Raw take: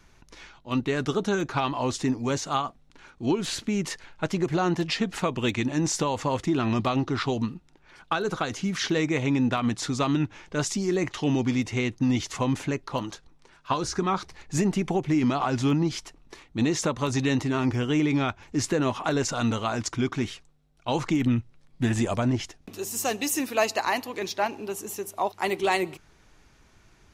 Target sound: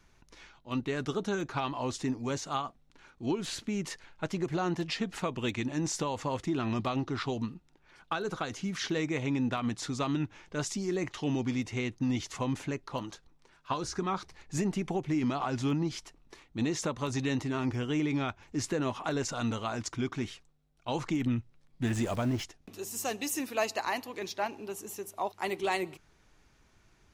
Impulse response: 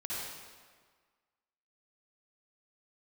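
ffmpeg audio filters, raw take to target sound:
-filter_complex "[0:a]asettb=1/sr,asplit=3[a][b][c];[a]atrim=end=21.854[d];[b]atrim=start=21.85:end=22.44,asetpts=PTS-STARTPTS,afade=t=in:d=0.004:c=qsin,afade=t=out:st=0.586:d=0.004:c=qsin,aeval=exprs='val(0)+0.5*0.0188*sgn(val(0))':c=same[e];[c]atrim=start=22.436[f];[d][e]acrossfade=d=0.004:c1=hsin:c2=qsin[g];[g][f]acrossfade=d=0.004:c1=qsin:c2=hsin,volume=-6.5dB"

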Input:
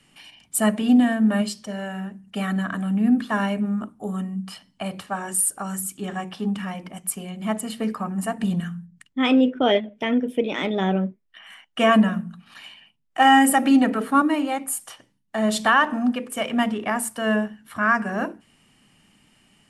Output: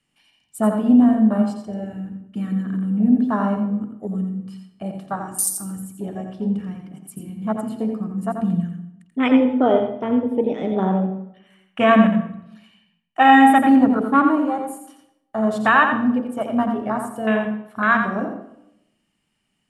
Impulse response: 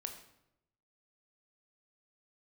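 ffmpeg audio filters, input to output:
-filter_complex "[0:a]afwtdn=0.0631,asplit=2[a][b];[1:a]atrim=start_sample=2205,adelay=86[c];[b][c]afir=irnorm=-1:irlink=0,volume=-3dB[d];[a][d]amix=inputs=2:normalize=0,volume=2dB"

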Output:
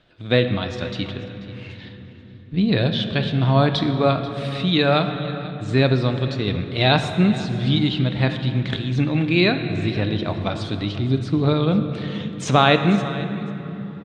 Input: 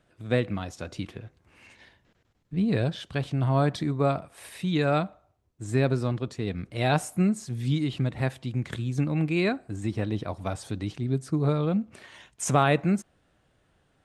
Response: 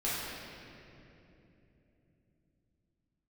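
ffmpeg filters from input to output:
-filter_complex "[0:a]lowpass=f=3.8k:t=q:w=3,aecho=1:1:487:0.133,asplit=2[a][b];[1:a]atrim=start_sample=2205,asetrate=32193,aresample=44100[c];[b][c]afir=irnorm=-1:irlink=0,volume=-15.5dB[d];[a][d]amix=inputs=2:normalize=0,volume=4.5dB"

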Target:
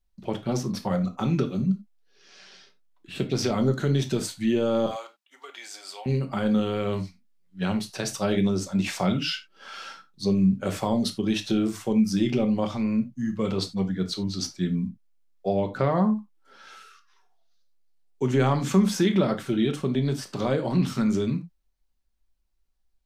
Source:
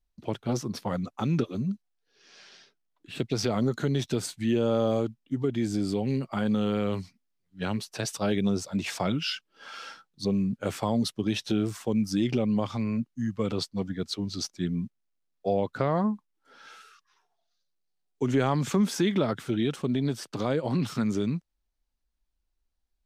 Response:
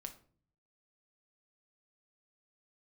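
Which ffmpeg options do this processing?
-filter_complex "[0:a]asettb=1/sr,asplit=3[a][b][c];[a]atrim=end=4.864[d];[b]atrim=start=4.86:end=6.06,asetpts=PTS-STARTPTS,afade=t=in:d=0.004:c=qsin,afade=t=out:st=1.196:d=0.004:c=qsin,highpass=f=770:w=0.5412,highpass=f=770:w=1.3066[e];[c]atrim=start=6.056[f];[d][e]acrossfade=d=0.004:c1=hsin:c2=qsin[g];[g][f]acrossfade=d=0.004:c1=qsin:c2=hsin[h];[1:a]atrim=start_sample=2205,atrim=end_sample=4410[i];[h][i]afir=irnorm=-1:irlink=0,volume=6.5dB"

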